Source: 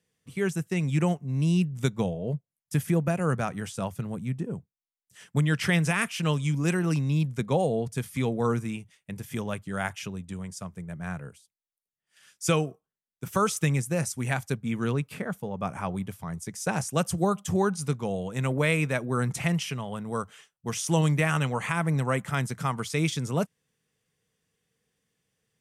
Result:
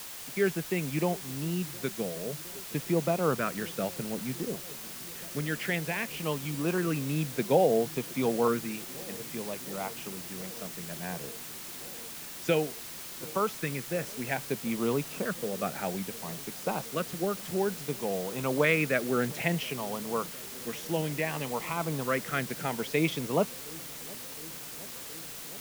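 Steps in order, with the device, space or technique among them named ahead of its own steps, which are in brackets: shortwave radio (BPF 270–2700 Hz; tremolo 0.26 Hz, depth 50%; LFO notch saw up 0.59 Hz 780–2000 Hz; white noise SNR 10 dB); dark delay 0.715 s, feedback 82%, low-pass 580 Hz, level -21 dB; gain +4 dB

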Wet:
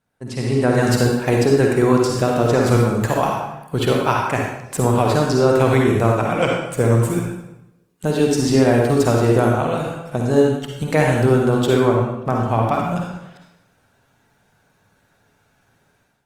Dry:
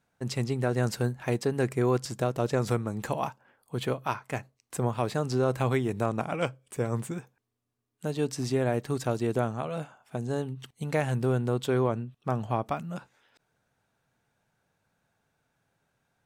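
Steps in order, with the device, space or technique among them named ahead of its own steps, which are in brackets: speakerphone in a meeting room (reverb RT60 0.90 s, pre-delay 45 ms, DRR -0.5 dB; AGC gain up to 11.5 dB; Opus 32 kbps 48000 Hz)

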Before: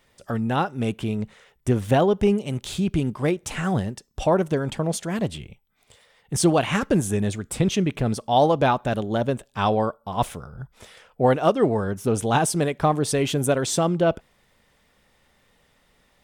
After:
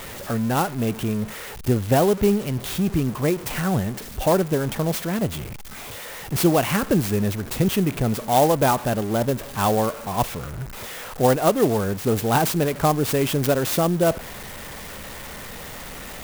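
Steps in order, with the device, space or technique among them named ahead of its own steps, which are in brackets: early CD player with a faulty converter (zero-crossing step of -30 dBFS; clock jitter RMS 0.049 ms)

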